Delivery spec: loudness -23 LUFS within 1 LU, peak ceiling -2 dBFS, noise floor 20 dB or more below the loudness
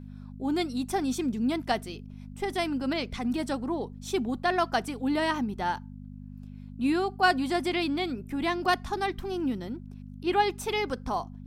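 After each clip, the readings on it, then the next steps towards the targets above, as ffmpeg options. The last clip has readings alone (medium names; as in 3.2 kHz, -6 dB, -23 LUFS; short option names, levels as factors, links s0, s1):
hum 50 Hz; highest harmonic 250 Hz; hum level -40 dBFS; loudness -29.0 LUFS; peak level -11.0 dBFS; loudness target -23.0 LUFS
-> -af "bandreject=f=50:t=h:w=4,bandreject=f=100:t=h:w=4,bandreject=f=150:t=h:w=4,bandreject=f=200:t=h:w=4,bandreject=f=250:t=h:w=4"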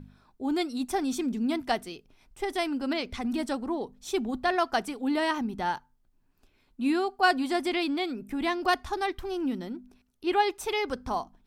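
hum not found; loudness -29.5 LUFS; peak level -11.0 dBFS; loudness target -23.0 LUFS
-> -af "volume=2.11"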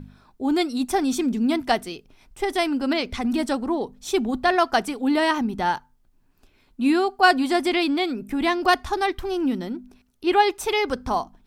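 loudness -23.0 LUFS; peak level -4.5 dBFS; noise floor -61 dBFS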